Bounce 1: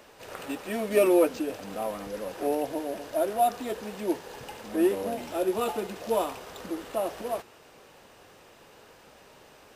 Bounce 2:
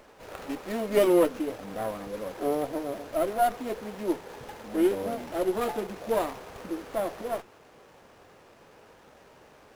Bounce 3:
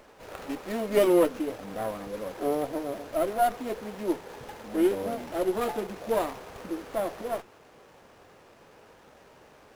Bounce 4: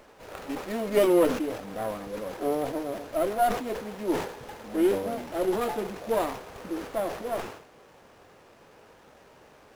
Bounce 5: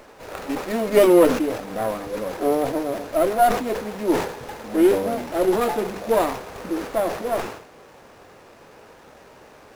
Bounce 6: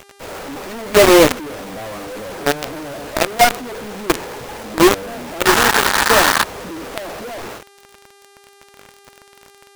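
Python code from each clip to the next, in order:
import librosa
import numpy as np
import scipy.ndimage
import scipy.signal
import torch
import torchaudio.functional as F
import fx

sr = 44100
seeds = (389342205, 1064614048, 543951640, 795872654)

y1 = fx.running_max(x, sr, window=9)
y2 = y1
y3 = fx.sustainer(y2, sr, db_per_s=86.0)
y4 = fx.peak_eq(y3, sr, hz=3100.0, db=-2.5, octaves=0.23)
y4 = fx.hum_notches(y4, sr, base_hz=50, count=4)
y4 = F.gain(torch.from_numpy(y4), 7.0).numpy()
y5 = fx.spec_paint(y4, sr, seeds[0], shape='noise', start_s=5.45, length_s=0.99, low_hz=790.0, high_hz=1900.0, level_db=-18.0)
y5 = fx.quant_companded(y5, sr, bits=2)
y5 = fx.dmg_buzz(y5, sr, base_hz=400.0, harmonics=30, level_db=-45.0, tilt_db=-4, odd_only=False)
y5 = F.gain(torch.from_numpy(y5), -3.5).numpy()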